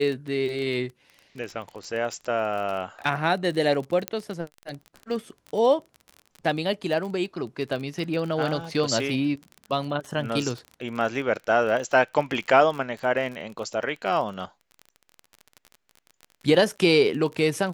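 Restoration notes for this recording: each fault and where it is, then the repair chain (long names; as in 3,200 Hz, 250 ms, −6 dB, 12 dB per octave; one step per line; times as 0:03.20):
surface crackle 29 per second −31 dBFS
0:04.08: click −10 dBFS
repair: click removal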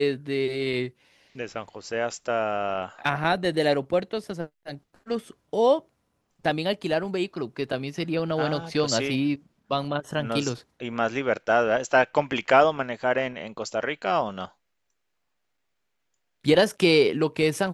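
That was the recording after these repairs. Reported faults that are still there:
none of them is left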